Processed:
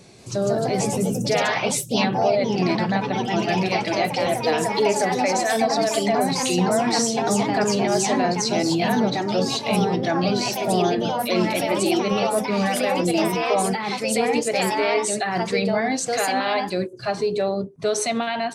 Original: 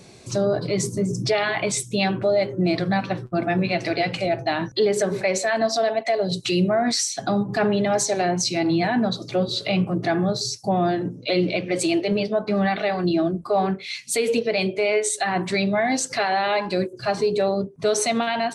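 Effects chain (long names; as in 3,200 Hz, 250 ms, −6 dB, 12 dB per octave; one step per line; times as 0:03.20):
delay with pitch and tempo change per echo 186 ms, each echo +2 semitones, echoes 3
level −1.5 dB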